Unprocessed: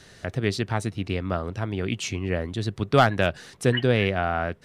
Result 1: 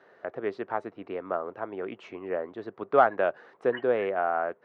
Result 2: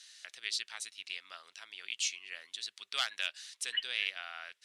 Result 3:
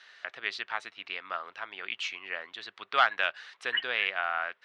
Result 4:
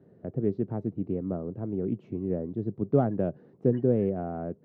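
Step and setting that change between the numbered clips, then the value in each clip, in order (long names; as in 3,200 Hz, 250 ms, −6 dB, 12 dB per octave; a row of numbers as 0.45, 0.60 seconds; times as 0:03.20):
flat-topped band-pass, frequency: 740, 5,900, 2,000, 260 Hertz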